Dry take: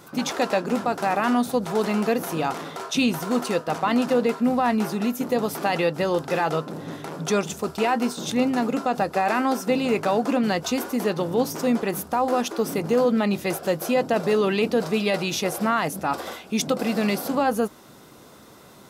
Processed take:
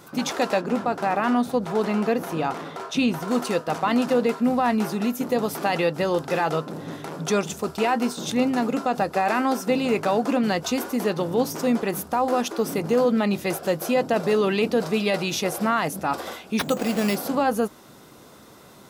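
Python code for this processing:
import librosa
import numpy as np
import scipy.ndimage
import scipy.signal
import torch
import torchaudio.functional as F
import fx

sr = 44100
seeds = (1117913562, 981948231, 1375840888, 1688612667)

y = fx.high_shelf(x, sr, hz=4400.0, db=-8.5, at=(0.61, 3.28))
y = fx.resample_bad(y, sr, factor=6, down='none', up='hold', at=(16.59, 17.16))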